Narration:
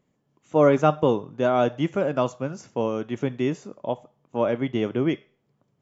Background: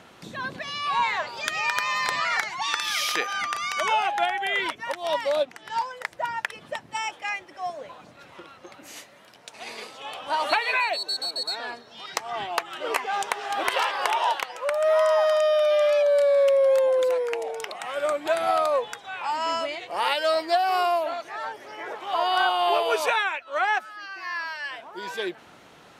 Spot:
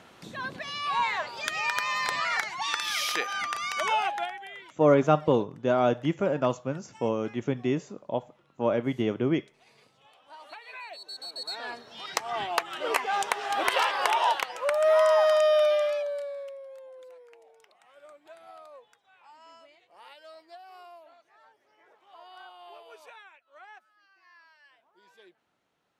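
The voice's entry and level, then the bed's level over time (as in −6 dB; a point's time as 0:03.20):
4.25 s, −2.5 dB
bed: 0:04.07 −3 dB
0:04.68 −22.5 dB
0:10.55 −22.5 dB
0:11.82 −0.5 dB
0:15.63 −0.5 dB
0:16.68 −26 dB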